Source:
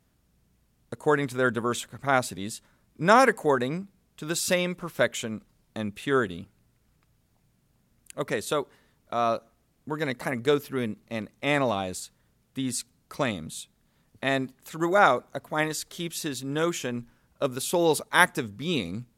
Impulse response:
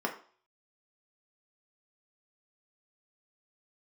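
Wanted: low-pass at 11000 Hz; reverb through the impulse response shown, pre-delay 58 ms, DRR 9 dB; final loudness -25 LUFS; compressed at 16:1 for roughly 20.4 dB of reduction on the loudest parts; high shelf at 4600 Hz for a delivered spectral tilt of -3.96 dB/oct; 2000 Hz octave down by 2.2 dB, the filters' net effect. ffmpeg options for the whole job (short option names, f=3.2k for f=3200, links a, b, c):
-filter_complex "[0:a]lowpass=11k,equalizer=f=2k:t=o:g=-3.5,highshelf=f=4.6k:g=3.5,acompressor=threshold=-34dB:ratio=16,asplit=2[a][b];[1:a]atrim=start_sample=2205,adelay=58[c];[b][c]afir=irnorm=-1:irlink=0,volume=-16dB[d];[a][d]amix=inputs=2:normalize=0,volume=14.5dB"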